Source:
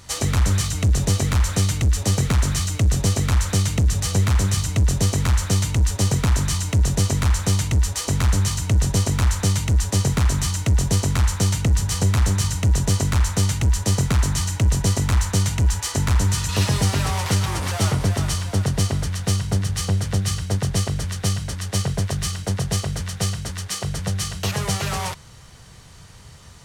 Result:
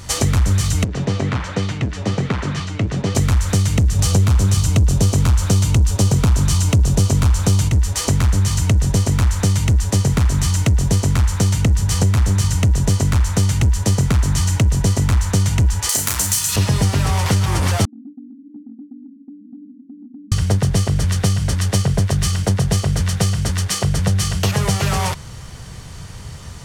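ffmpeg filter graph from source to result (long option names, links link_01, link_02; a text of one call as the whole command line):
ffmpeg -i in.wav -filter_complex "[0:a]asettb=1/sr,asplit=3[link_01][link_02][link_03];[link_01]atrim=end=0.844[link_04];[link_02]atrim=start=0.84:end=3.15,asetpts=PTS-STARTPTS,afade=type=in:duration=0.004:curve=qsin,afade=type=out:start_time=2.306:duration=0.004:curve=qsin,flanger=delay=1.9:depth=8.6:regen=74:speed=1.3:shape=sinusoidal,highpass=160,lowpass=3300[link_05];[link_03]atrim=start=3.146[link_06];[link_04][link_05]acrossfade=duration=0.004:curve1=hsin:curve2=qsin[link_07];[link_07][link_06]acrossfade=duration=0.004:curve1=qsin:curve2=hsin,asettb=1/sr,asplit=3[link_08][link_09][link_10];[link_08]atrim=end=3.994[link_11];[link_09]atrim=start=3.99:end=7.69,asetpts=PTS-STARTPTS,afade=type=in:duration=0.004:curve=qsin,afade=type=out:start_time=3.696:duration=0.004:curve=qsin,equalizer=frequency=1900:width_type=o:width=0.48:gain=-5.5,acontrast=61[link_12];[link_10]atrim=start=7.686[link_13];[link_11][link_12]acrossfade=duration=0.004:curve1=hsin:curve2=qsin[link_14];[link_14][link_13]acrossfade=duration=0.004:curve1=qsin:curve2=hsin,asettb=1/sr,asplit=3[link_15][link_16][link_17];[link_15]atrim=end=15.894[link_18];[link_16]atrim=start=15.89:end=16.56,asetpts=PTS-STARTPTS,afade=type=in:duration=0.004:curve=qsin,afade=type=out:start_time=0.666:duration=0.004:curve=qsin,highpass=47,aemphasis=mode=production:type=riaa,asplit=2[link_19][link_20];[link_20]adelay=32,volume=-4dB[link_21];[link_19][link_21]amix=inputs=2:normalize=0,atrim=end_sample=29547[link_22];[link_17]atrim=start=16.556[link_23];[link_18][link_22]acrossfade=duration=0.004:curve1=hsin:curve2=qsin[link_24];[link_24][link_23]acrossfade=duration=0.004:curve1=qsin:curve2=hsin,asettb=1/sr,asplit=3[link_25][link_26][link_27];[link_25]atrim=end=17.854[link_28];[link_26]atrim=start=17.85:end=20.32,asetpts=PTS-STARTPTS,afade=type=in:duration=0.004:curve=qsin,afade=type=out:start_time=2.466:duration=0.004:curve=qsin,asuperpass=centerf=260:order=12:qfactor=3,acompressor=threshold=-45dB:ratio=4:attack=3.2:release=140:knee=1:detection=peak[link_29];[link_27]atrim=start=20.316[link_30];[link_28][link_29]acrossfade=duration=0.004:curve1=hsin:curve2=qsin[link_31];[link_31][link_30]acrossfade=duration=0.004:curve1=qsin:curve2=hsin,acompressor=threshold=-24dB:ratio=6,lowshelf=frequency=370:gain=4.5,bandreject=frequency=3900:width=30,volume=7.5dB" out.wav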